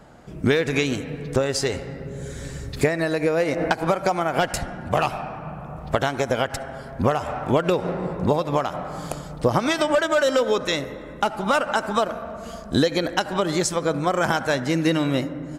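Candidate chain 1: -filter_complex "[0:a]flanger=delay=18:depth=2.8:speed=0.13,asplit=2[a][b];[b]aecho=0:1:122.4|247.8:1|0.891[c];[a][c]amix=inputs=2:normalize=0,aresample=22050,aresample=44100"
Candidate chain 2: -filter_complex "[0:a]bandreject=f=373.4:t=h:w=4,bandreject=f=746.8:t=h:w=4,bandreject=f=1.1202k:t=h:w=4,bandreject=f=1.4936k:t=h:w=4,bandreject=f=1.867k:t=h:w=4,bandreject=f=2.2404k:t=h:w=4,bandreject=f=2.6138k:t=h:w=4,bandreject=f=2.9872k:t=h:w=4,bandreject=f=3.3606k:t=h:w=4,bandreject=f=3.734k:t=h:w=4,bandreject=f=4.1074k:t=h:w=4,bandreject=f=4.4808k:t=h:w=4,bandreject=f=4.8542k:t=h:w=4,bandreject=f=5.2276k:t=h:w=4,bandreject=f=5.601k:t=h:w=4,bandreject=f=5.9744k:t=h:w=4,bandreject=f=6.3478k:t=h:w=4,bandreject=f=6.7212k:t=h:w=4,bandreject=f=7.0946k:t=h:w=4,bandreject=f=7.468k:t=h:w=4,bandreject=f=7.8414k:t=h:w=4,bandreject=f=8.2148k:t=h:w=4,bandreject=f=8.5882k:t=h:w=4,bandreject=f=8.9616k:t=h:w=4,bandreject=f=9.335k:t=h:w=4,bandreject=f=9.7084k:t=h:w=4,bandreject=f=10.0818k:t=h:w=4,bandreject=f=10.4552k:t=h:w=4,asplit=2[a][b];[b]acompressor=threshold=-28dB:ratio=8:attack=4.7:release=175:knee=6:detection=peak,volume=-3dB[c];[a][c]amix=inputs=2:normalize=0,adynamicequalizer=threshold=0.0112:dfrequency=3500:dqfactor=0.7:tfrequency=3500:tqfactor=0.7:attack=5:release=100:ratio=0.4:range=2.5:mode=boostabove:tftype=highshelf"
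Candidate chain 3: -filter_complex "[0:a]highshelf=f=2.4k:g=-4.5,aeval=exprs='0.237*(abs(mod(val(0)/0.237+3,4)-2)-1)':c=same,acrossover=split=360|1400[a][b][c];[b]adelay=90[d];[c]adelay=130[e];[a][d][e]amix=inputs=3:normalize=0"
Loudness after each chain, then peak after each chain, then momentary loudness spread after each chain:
-22.0, -21.5, -26.0 LUFS; -5.5, -2.5, -9.5 dBFS; 10, 11, 11 LU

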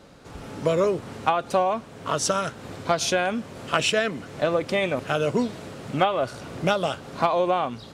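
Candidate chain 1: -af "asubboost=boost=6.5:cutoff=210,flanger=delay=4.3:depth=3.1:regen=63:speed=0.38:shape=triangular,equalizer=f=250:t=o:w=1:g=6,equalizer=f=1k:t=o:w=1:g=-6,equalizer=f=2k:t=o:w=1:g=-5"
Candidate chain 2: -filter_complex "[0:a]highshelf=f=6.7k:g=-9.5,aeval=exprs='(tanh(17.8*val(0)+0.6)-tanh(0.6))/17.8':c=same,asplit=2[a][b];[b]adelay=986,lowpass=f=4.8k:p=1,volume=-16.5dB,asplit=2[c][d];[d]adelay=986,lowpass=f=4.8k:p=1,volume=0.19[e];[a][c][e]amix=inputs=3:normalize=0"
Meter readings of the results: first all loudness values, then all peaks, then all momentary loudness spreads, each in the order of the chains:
-25.5, -31.5 LUFS; -8.0, -20.0 dBFS; 10, 7 LU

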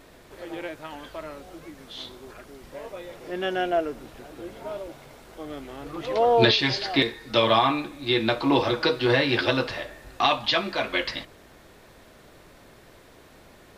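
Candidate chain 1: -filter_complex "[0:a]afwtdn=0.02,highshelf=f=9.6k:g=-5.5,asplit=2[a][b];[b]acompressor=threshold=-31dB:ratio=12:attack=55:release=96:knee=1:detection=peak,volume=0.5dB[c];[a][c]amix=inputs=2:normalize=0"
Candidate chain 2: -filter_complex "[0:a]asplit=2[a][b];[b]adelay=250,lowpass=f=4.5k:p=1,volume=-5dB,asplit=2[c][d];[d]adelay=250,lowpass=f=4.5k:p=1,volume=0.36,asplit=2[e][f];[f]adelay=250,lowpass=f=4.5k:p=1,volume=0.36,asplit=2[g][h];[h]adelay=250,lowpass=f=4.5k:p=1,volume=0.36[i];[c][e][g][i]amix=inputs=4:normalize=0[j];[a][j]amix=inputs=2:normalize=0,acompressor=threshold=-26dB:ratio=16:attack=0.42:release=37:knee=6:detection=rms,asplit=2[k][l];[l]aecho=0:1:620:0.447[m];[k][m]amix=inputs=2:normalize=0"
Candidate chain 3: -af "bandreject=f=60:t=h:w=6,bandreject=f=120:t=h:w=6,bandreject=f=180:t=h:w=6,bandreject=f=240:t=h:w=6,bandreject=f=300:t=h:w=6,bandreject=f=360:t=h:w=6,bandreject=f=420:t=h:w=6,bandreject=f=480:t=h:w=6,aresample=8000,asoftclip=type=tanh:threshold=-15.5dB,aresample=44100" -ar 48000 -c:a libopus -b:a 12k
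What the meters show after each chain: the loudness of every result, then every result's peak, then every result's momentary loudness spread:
-21.5, -33.5, -27.5 LUFS; -5.0, -20.0, -12.0 dBFS; 19, 17, 19 LU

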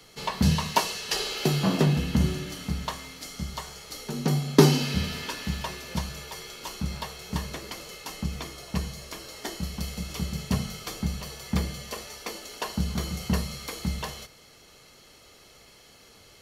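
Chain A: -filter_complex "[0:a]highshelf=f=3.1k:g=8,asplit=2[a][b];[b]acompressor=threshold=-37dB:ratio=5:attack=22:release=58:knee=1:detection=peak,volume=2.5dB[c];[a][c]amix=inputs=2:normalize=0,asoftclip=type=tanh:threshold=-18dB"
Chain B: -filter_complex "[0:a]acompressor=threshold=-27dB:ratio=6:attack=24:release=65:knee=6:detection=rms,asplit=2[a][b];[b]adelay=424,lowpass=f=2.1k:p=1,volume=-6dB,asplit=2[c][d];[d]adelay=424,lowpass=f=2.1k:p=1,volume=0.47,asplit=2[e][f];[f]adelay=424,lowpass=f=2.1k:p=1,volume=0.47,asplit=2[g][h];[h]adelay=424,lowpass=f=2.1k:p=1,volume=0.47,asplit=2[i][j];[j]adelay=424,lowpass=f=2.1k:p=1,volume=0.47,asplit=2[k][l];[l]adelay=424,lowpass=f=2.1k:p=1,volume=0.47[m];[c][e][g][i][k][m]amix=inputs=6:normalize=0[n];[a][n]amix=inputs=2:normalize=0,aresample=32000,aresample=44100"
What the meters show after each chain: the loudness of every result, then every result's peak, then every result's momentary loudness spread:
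-26.0, -32.5 LUFS; -18.0, -10.5 dBFS; 17, 14 LU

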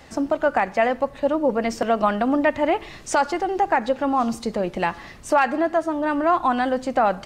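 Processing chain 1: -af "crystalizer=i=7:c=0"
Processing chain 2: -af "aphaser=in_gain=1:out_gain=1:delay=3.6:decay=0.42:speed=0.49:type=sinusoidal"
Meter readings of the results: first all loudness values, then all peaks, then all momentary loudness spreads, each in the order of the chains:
-19.0, -20.5 LUFS; -1.0, -4.0 dBFS; 6, 7 LU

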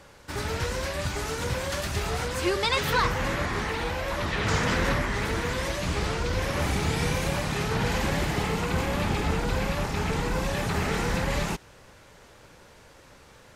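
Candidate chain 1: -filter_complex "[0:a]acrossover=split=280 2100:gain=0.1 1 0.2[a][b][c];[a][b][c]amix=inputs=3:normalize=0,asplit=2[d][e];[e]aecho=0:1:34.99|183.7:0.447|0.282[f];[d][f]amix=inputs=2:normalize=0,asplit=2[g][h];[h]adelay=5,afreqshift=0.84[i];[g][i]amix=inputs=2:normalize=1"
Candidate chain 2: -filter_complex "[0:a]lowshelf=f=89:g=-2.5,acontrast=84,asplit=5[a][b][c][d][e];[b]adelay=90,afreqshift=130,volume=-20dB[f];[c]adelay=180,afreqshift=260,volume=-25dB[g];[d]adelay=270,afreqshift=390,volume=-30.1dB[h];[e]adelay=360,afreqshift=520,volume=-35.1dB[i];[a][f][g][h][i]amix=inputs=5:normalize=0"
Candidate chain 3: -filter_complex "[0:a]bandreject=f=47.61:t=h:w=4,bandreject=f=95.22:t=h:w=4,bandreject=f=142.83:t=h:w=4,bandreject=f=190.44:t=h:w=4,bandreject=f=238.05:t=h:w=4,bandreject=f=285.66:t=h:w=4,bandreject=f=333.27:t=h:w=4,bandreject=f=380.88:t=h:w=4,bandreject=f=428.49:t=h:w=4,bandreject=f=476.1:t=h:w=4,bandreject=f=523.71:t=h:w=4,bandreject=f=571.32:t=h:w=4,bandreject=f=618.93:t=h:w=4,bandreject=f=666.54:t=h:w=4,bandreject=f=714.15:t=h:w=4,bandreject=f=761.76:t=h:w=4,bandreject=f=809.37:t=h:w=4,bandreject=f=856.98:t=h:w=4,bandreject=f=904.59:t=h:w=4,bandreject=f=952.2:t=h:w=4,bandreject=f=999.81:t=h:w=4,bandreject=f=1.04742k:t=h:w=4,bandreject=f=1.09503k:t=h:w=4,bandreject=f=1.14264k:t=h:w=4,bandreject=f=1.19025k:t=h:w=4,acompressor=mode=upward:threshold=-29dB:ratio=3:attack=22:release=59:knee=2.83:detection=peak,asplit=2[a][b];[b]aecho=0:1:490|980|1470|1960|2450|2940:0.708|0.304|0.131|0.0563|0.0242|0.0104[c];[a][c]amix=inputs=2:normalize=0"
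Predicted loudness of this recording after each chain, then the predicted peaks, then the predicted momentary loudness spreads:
-33.5, -21.0, -26.0 LUFS; -15.5, -6.5, -6.0 dBFS; 6, 5, 8 LU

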